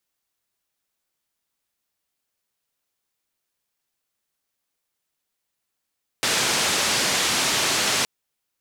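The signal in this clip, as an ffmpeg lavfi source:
ffmpeg -f lavfi -i "anoisesrc=color=white:duration=1.82:sample_rate=44100:seed=1,highpass=frequency=110,lowpass=frequency=6600,volume=-12.1dB" out.wav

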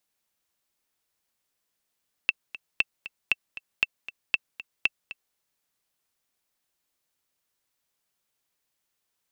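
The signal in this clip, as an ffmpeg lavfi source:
ffmpeg -f lavfi -i "aevalsrc='pow(10,(-7.5-16*gte(mod(t,2*60/234),60/234))/20)*sin(2*PI*2670*mod(t,60/234))*exp(-6.91*mod(t,60/234)/0.03)':duration=3.07:sample_rate=44100" out.wav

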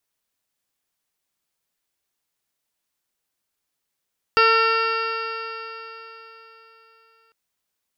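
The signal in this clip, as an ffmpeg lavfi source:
ffmpeg -f lavfi -i "aevalsrc='0.112*pow(10,-3*t/3.81)*sin(2*PI*450.2*t)+0.0501*pow(10,-3*t/3.81)*sin(2*PI*901.56*t)+0.188*pow(10,-3*t/3.81)*sin(2*PI*1355.27*t)+0.0631*pow(10,-3*t/3.81)*sin(2*PI*1812.48*t)+0.0335*pow(10,-3*t/3.81)*sin(2*PI*2274.34*t)+0.1*pow(10,-3*t/3.81)*sin(2*PI*2741.96*t)+0.0178*pow(10,-3*t/3.81)*sin(2*PI*3216.44*t)+0.0141*pow(10,-3*t/3.81)*sin(2*PI*3698.87*t)+0.015*pow(10,-3*t/3.81)*sin(2*PI*4190.27*t)+0.0562*pow(10,-3*t/3.81)*sin(2*PI*4691.67*t)+0.0178*pow(10,-3*t/3.81)*sin(2*PI*5204.03*t)':duration=2.95:sample_rate=44100" out.wav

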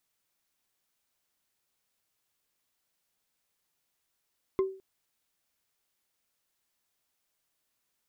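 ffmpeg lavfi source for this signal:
ffmpeg -f lavfi -i "aevalsrc='0.0944*pow(10,-3*t/0.4)*sin(2*PI*383*t)+0.0282*pow(10,-3*t/0.118)*sin(2*PI*1055.9*t)+0.00841*pow(10,-3*t/0.053)*sin(2*PI*2069.7*t)+0.00251*pow(10,-3*t/0.029)*sin(2*PI*3421.3*t)+0.00075*pow(10,-3*t/0.018)*sin(2*PI*5109.2*t)':duration=0.21:sample_rate=44100" out.wav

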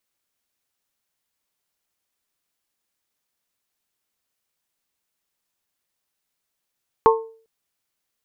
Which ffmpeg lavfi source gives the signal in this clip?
ffmpeg -f lavfi -i "aevalsrc='0.316*pow(10,-3*t/0.45)*sin(2*PI*449*t)+0.282*pow(10,-3*t/0.277)*sin(2*PI*898*t)+0.251*pow(10,-3*t/0.244)*sin(2*PI*1077.6*t)':duration=0.4:sample_rate=44100" out.wav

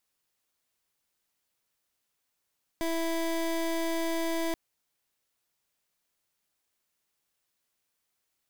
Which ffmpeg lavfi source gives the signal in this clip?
ffmpeg -f lavfi -i "aevalsrc='0.0335*(2*lt(mod(330*t,1),0.24)-1)':duration=1.73:sample_rate=44100" out.wav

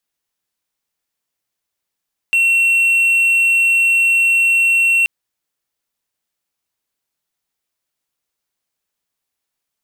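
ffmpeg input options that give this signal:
ffmpeg -f lavfi -i "aevalsrc='0.376*(1-4*abs(mod(2720*t+0.25,1)-0.5))':duration=2.73:sample_rate=44100" out.wav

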